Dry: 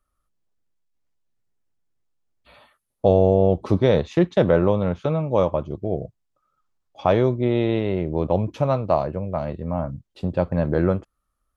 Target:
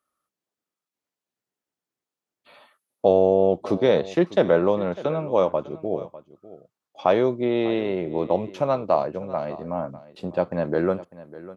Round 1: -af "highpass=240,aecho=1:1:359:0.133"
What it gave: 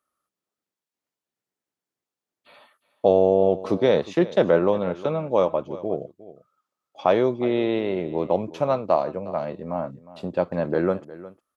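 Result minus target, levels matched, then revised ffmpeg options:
echo 0.241 s early
-af "highpass=240,aecho=1:1:600:0.133"

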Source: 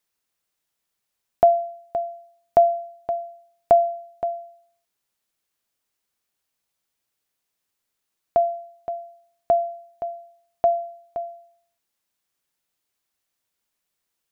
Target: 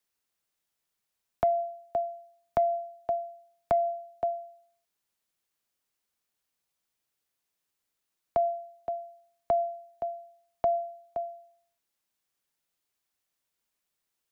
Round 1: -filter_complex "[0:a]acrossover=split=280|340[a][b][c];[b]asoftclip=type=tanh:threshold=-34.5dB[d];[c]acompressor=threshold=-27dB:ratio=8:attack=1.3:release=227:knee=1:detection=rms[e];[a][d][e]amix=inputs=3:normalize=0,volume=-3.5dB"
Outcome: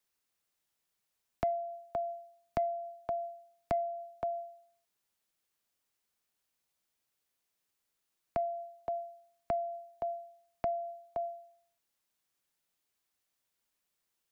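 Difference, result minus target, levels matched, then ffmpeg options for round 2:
compressor: peak gain reduction +9 dB
-filter_complex "[0:a]acrossover=split=280|340[a][b][c];[b]asoftclip=type=tanh:threshold=-34.5dB[d];[c]acompressor=threshold=-17dB:ratio=8:attack=1.3:release=227:knee=1:detection=rms[e];[a][d][e]amix=inputs=3:normalize=0,volume=-3.5dB"

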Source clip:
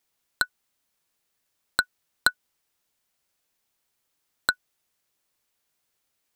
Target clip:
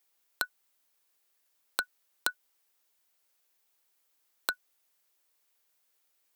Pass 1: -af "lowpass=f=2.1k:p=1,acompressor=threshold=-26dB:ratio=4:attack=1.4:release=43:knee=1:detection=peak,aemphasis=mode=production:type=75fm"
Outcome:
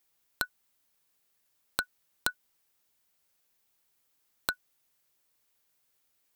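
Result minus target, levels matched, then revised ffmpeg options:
250 Hz band +5.0 dB
-af "lowpass=f=2.1k:p=1,acompressor=threshold=-26dB:ratio=4:attack=1.4:release=43:knee=1:detection=peak,highpass=330,aemphasis=mode=production:type=75fm"

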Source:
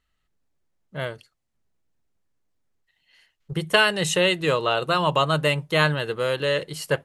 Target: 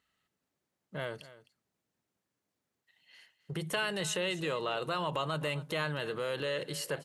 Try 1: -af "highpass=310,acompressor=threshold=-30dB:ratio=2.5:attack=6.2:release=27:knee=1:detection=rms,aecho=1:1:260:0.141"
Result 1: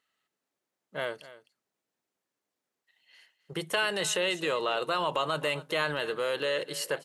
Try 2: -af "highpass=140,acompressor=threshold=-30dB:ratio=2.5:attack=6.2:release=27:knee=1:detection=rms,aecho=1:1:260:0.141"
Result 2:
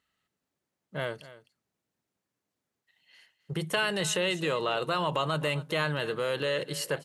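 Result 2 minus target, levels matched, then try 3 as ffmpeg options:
compressor: peak gain reduction -5 dB
-af "highpass=140,acompressor=threshold=-38dB:ratio=2.5:attack=6.2:release=27:knee=1:detection=rms,aecho=1:1:260:0.141"

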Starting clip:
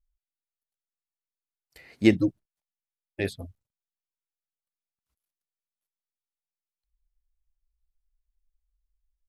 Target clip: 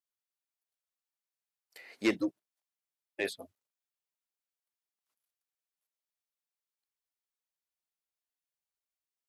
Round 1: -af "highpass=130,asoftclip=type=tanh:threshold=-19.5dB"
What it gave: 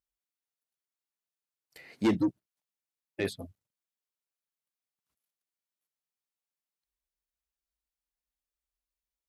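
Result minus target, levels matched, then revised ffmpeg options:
125 Hz band +10.5 dB
-af "highpass=440,asoftclip=type=tanh:threshold=-19.5dB"

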